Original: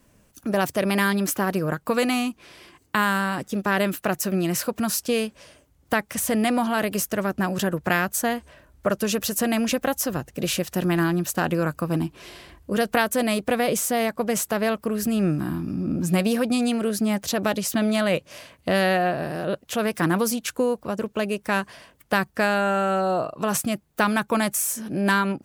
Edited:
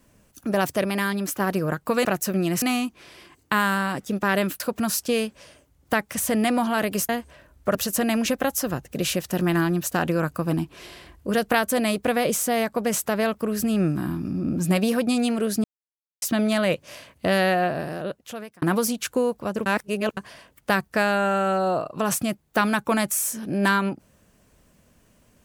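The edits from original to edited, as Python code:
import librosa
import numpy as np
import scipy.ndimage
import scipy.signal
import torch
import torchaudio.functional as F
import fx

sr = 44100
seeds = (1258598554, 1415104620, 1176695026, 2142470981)

y = fx.edit(x, sr, fx.clip_gain(start_s=0.85, length_s=0.55, db=-3.5),
    fx.move(start_s=4.03, length_s=0.57, to_s=2.05),
    fx.cut(start_s=7.09, length_s=1.18),
    fx.cut(start_s=8.93, length_s=0.25),
    fx.silence(start_s=17.07, length_s=0.58),
    fx.fade_out_span(start_s=19.17, length_s=0.88),
    fx.reverse_span(start_s=21.09, length_s=0.51), tone=tone)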